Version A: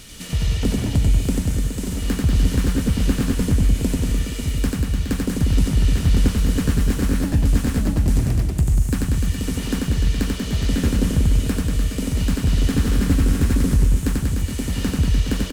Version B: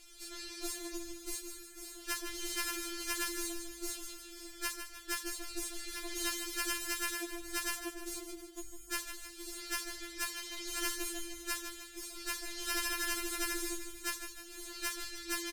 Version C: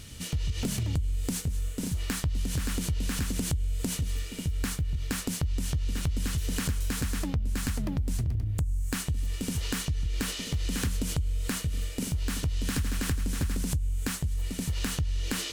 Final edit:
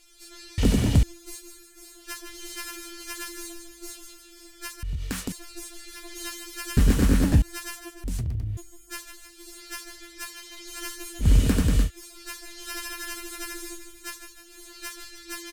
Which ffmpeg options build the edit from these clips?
-filter_complex "[0:a]asplit=3[a][b][c];[2:a]asplit=2[d][e];[1:a]asplit=6[f][g][h][i][j][k];[f]atrim=end=0.582[l];[a]atrim=start=0.578:end=1.032[m];[g]atrim=start=1.028:end=4.832[n];[d]atrim=start=4.828:end=5.322[o];[h]atrim=start=5.318:end=6.772[p];[b]atrim=start=6.768:end=7.422[q];[i]atrim=start=7.418:end=8.042[r];[e]atrim=start=8.038:end=8.572[s];[j]atrim=start=8.568:end=11.29[t];[c]atrim=start=11.19:end=11.91[u];[k]atrim=start=11.81[v];[l][m]acrossfade=d=0.004:c1=hsin:c2=hsin[w];[w][n]acrossfade=d=0.004:c1=hsin:c2=hsin[x];[x][o]acrossfade=d=0.004:c1=hsin:c2=hsin[y];[y][p]acrossfade=d=0.004:c1=hsin:c2=hsin[z];[z][q]acrossfade=d=0.004:c1=hsin:c2=hsin[aa];[aa][r]acrossfade=d=0.004:c1=hsin:c2=hsin[ab];[ab][s]acrossfade=d=0.004:c1=hsin:c2=hsin[ac];[ac][t]acrossfade=d=0.004:c1=hsin:c2=hsin[ad];[ad][u]acrossfade=d=0.1:c1=tri:c2=tri[ae];[ae][v]acrossfade=d=0.1:c1=tri:c2=tri"

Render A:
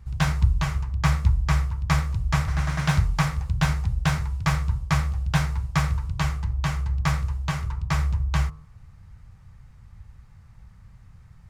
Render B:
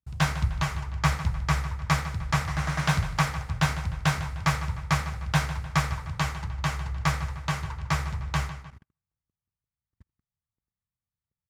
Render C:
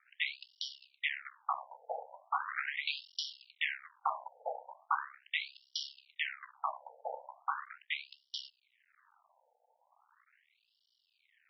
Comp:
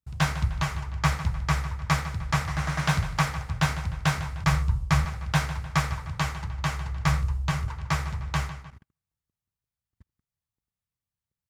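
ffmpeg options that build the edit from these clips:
-filter_complex "[0:a]asplit=2[a][b];[1:a]asplit=3[c][d][e];[c]atrim=end=4.442[f];[a]atrim=start=4.438:end=5.052[g];[d]atrim=start=5.048:end=7.052[h];[b]atrim=start=7.048:end=7.682[i];[e]atrim=start=7.678[j];[f][g]acrossfade=d=0.004:c1=hsin:c2=hsin[k];[k][h]acrossfade=d=0.004:c1=hsin:c2=hsin[l];[l][i]acrossfade=d=0.004:c1=hsin:c2=hsin[m];[m][j]acrossfade=d=0.004:c1=hsin:c2=hsin"

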